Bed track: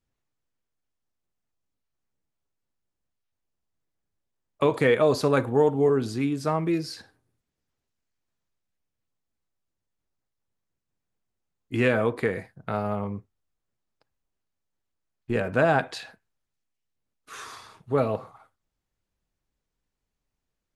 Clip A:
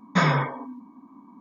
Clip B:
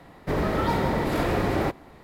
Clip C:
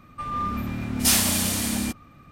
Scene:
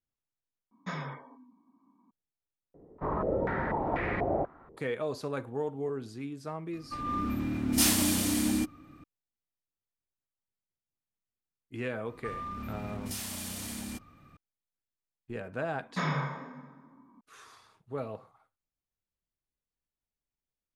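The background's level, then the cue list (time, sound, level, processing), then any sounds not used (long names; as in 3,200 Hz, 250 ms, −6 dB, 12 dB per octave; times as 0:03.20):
bed track −13 dB
0:00.71: overwrite with A −17 dB
0:02.74: overwrite with B −9.5 dB + low-pass on a step sequencer 4.1 Hz 430–2,100 Hz
0:06.73: mix in C −6 dB + parametric band 300 Hz +14 dB 0.39 octaves
0:12.06: mix in C −7 dB + downward compressor, threshold −28 dBFS
0:15.81: mix in A −11.5 dB + dense smooth reverb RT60 1.4 s, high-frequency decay 0.7×, DRR 4 dB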